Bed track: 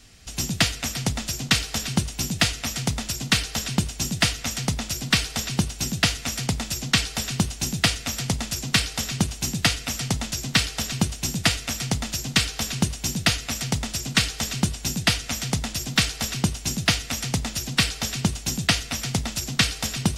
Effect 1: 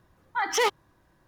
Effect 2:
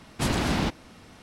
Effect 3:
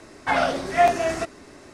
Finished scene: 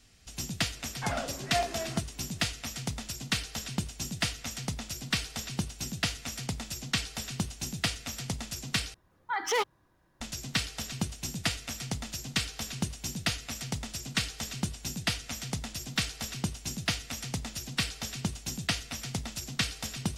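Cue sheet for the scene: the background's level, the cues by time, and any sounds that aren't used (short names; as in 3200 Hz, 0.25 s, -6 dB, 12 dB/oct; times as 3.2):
bed track -9.5 dB
0.75 add 3 -13 dB
8.94 replace with 1 -4.5 dB
not used: 2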